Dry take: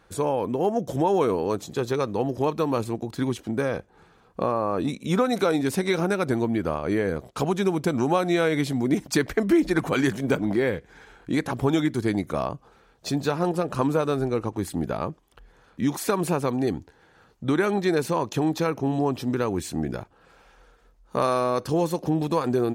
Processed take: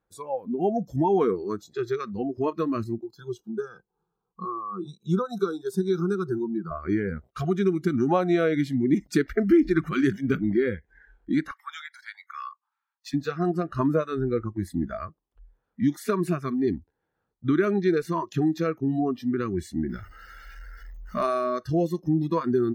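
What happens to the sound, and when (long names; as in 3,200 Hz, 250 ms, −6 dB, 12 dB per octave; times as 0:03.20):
0:03.02–0:06.71: phaser with its sweep stopped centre 400 Hz, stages 8
0:11.51–0:13.14: Butterworth high-pass 880 Hz 72 dB per octave
0:19.89–0:21.26: converter with a step at zero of −35.5 dBFS
whole clip: noise reduction from a noise print of the clip's start 22 dB; high-shelf EQ 2,000 Hz −11.5 dB; level +1.5 dB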